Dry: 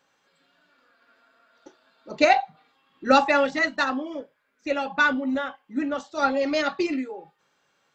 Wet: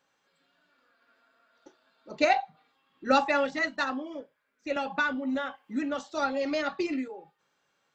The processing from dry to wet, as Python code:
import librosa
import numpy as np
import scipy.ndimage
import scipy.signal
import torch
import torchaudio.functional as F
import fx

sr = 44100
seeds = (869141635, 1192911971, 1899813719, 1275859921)

y = fx.band_squash(x, sr, depth_pct=70, at=(4.76, 7.08))
y = F.gain(torch.from_numpy(y), -5.5).numpy()